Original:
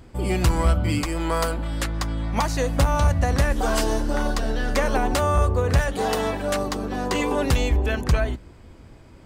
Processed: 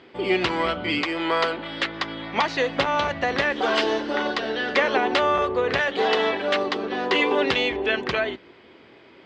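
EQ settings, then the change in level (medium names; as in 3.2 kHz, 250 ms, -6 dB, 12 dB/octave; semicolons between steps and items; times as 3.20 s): cabinet simulation 280–3700 Hz, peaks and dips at 390 Hz +7 dB, 2 kHz +4 dB, 3.2 kHz +3 dB; treble shelf 2.4 kHz +11 dB; 0.0 dB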